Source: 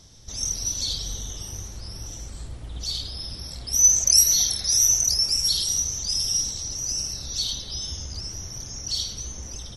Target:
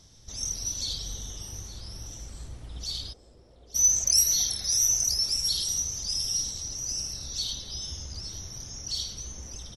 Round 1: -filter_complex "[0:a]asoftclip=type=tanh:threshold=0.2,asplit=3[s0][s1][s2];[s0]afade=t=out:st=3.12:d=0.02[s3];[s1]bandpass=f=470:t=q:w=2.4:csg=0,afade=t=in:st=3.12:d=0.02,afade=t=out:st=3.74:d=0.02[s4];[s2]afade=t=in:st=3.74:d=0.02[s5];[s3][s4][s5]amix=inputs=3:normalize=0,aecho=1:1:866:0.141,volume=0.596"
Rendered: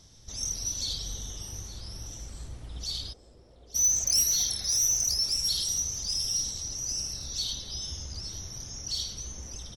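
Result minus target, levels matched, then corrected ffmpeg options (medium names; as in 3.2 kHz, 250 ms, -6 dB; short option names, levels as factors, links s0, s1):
saturation: distortion +13 dB
-filter_complex "[0:a]asoftclip=type=tanh:threshold=0.562,asplit=3[s0][s1][s2];[s0]afade=t=out:st=3.12:d=0.02[s3];[s1]bandpass=f=470:t=q:w=2.4:csg=0,afade=t=in:st=3.12:d=0.02,afade=t=out:st=3.74:d=0.02[s4];[s2]afade=t=in:st=3.74:d=0.02[s5];[s3][s4][s5]amix=inputs=3:normalize=0,aecho=1:1:866:0.141,volume=0.596"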